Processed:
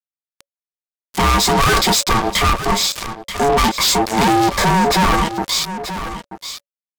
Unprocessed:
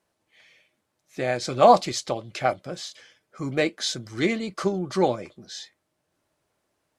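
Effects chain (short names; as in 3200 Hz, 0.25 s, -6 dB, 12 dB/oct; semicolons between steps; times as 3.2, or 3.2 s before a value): ripple EQ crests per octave 1.4, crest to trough 14 dB; fuzz box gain 37 dB, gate -43 dBFS; ring modulator 560 Hz; wow and flutter 21 cents; on a send: echo 0.932 s -22 dB; on the sum: maximiser +22.5 dB; gain -8 dB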